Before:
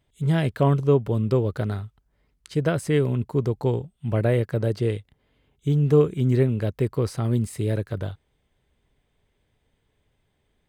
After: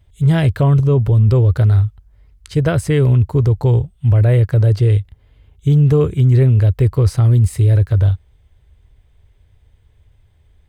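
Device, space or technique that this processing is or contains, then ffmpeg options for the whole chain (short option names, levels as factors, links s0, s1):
car stereo with a boomy subwoofer: -filter_complex "[0:a]asettb=1/sr,asplit=3[s0][s1][s2];[s0]atrim=end=0.624[s3];[s1]atrim=start=0.62:end=1.3,asetpts=PTS-STARTPTS,afade=t=in:d=0.004:c=qsin,afade=t=out:st=0.676:d=0.004:c=qsin,equalizer=f=190:w=1.4:g=4[s4];[s2]atrim=start=1.296[s5];[s3][s4]acrossfade=d=0.004:c1=hsin:c2=qsin[s6];[s6][s5]acrossfade=d=0.004:c1=qsin:c2=hsin,lowshelf=f=130:t=q:w=1.5:g=13,alimiter=limit=0.237:level=0:latency=1:release=11,volume=2.11"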